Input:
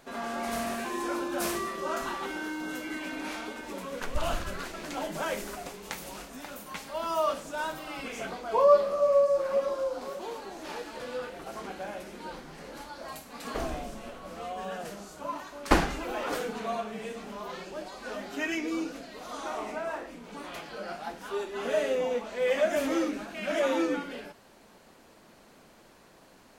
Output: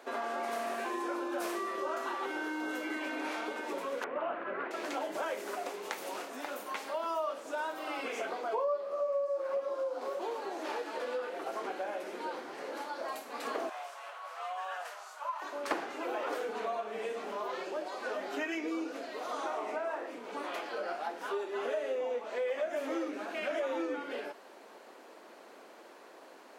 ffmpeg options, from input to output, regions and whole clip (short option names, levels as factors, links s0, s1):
-filter_complex "[0:a]asettb=1/sr,asplit=3[s0][s1][s2];[s0]atrim=end=4.044[s3];[s1]atrim=start=4.04:end=4.71,asetpts=PTS-STARTPTS,afade=t=in:d=0.004:c=qsin,afade=t=out:st=0.666:d=0.004:c=qsin,lowpass=f=2300:w=0.5412,lowpass=f=2300:w=1.3066,lowshelf=f=110:g=10.5[s4];[s2]atrim=start=4.706[s5];[s3][s4]acrossfade=d=0.004:c1=hsin:c2=qsin[s6];[s6][s5]acrossfade=d=0.004:c1=qsin:c2=hsin,asettb=1/sr,asplit=3[s7][s8][s9];[s7]atrim=end=13.694[s10];[s8]atrim=start=13.69:end=15.42,asetpts=PTS-STARTPTS,afade=t=in:d=0.004:c=qsin,afade=t=out:st=1.726:d=0.004:c=qsin,highpass=f=870:w=0.5412,highpass=f=870:w=1.3066,tiltshelf=f=1200:g=3[s11];[s9]atrim=start=15.416[s12];[s10][s11]acrossfade=d=0.004:c1=hsin:c2=qsin[s13];[s13][s12]acrossfade=d=0.004:c1=qsin:c2=hsin,highpass=f=320:w=0.5412,highpass=f=320:w=1.3066,highshelf=f=3000:g=-9.5,acompressor=threshold=0.0112:ratio=4,volume=1.88"